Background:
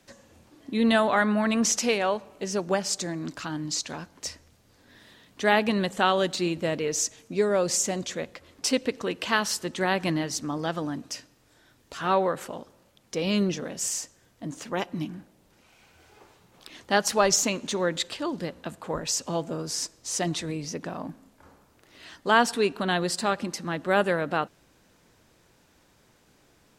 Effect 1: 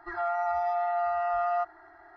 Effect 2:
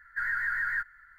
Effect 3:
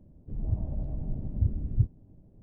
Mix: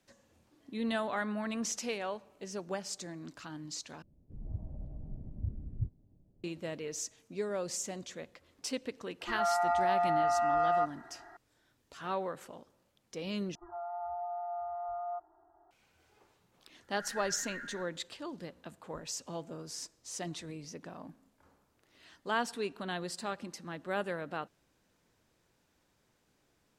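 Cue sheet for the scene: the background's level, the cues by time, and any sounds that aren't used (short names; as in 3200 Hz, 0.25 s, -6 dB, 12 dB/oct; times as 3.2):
background -12 dB
4.02 replace with 3 -10.5 dB
9.21 add 1 -0.5 dB
13.55 replace with 1 -9.5 dB + inverse Chebyshev low-pass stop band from 2600 Hz, stop band 50 dB
16.82 add 2 -17 dB + reverse delay 0.336 s, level 0 dB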